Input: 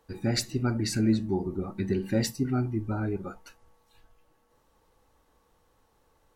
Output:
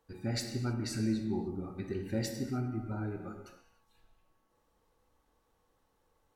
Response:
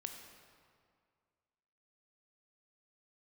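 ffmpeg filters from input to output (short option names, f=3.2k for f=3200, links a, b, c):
-filter_complex "[1:a]atrim=start_sample=2205,afade=t=out:st=0.4:d=0.01,atrim=end_sample=18081,asetrate=48510,aresample=44100[a];[0:a][a]afir=irnorm=-1:irlink=0,volume=-3.5dB"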